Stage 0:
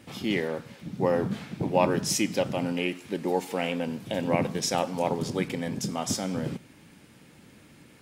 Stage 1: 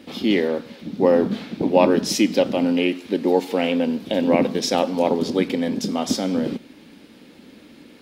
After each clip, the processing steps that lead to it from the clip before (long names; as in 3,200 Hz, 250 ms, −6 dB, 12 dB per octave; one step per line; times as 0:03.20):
graphic EQ with 10 bands 125 Hz −11 dB, 250 Hz +10 dB, 500 Hz +5 dB, 4,000 Hz +8 dB, 8,000 Hz −6 dB
level +2.5 dB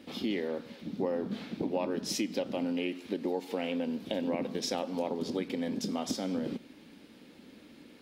downward compressor 4 to 1, threshold −22 dBFS, peak gain reduction 10.5 dB
level −7.5 dB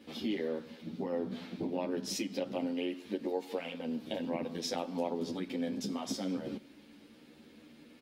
barber-pole flanger 10.4 ms +0.27 Hz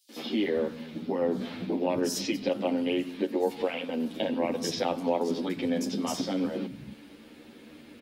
three-band delay without the direct sound highs, mids, lows 90/350 ms, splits 180/5,100 Hz
level +8 dB